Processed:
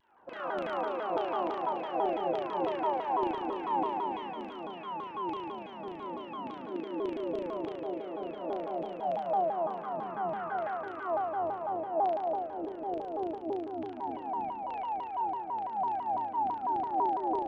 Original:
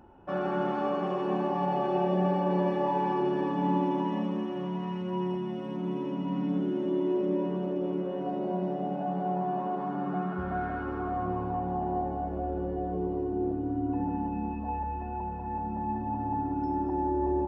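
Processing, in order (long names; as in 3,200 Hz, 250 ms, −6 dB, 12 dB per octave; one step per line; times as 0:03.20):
auto-filter band-pass saw down 3.4 Hz 440–3,200 Hz
flutter between parallel walls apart 6.2 metres, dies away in 1.4 s
pitch modulation by a square or saw wave saw down 6 Hz, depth 250 cents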